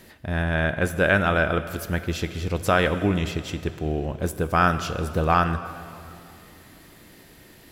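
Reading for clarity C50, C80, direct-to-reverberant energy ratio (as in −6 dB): 12.0 dB, 12.5 dB, 11.0 dB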